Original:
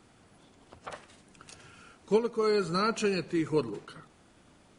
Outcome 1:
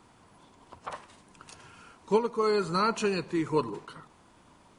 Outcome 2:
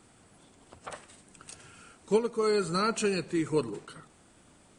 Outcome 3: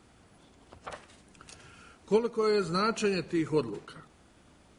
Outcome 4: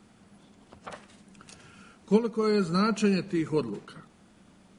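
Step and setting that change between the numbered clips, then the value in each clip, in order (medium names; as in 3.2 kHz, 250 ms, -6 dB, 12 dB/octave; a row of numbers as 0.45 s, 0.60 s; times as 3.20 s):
peaking EQ, frequency: 990 Hz, 8.3 kHz, 63 Hz, 200 Hz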